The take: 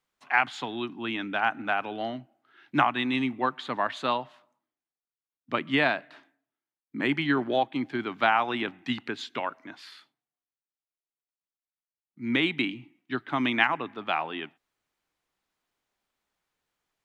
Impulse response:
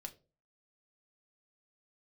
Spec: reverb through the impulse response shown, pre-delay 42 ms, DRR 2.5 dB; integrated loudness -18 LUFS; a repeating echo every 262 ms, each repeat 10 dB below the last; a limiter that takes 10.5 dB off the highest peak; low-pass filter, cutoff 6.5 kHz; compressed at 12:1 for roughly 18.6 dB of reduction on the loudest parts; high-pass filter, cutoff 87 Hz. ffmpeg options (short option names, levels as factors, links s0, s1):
-filter_complex "[0:a]highpass=87,lowpass=6500,acompressor=threshold=0.0158:ratio=12,alimiter=level_in=2.37:limit=0.0631:level=0:latency=1,volume=0.422,aecho=1:1:262|524|786|1048:0.316|0.101|0.0324|0.0104,asplit=2[s0][s1];[1:a]atrim=start_sample=2205,adelay=42[s2];[s1][s2]afir=irnorm=-1:irlink=0,volume=1.26[s3];[s0][s3]amix=inputs=2:normalize=0,volume=14.1"